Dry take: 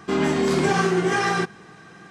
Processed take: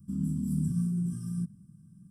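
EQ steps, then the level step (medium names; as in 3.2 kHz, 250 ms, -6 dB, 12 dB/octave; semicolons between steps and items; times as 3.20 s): inverse Chebyshev band-stop 410–4300 Hz, stop band 40 dB; static phaser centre 1.9 kHz, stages 6; 0.0 dB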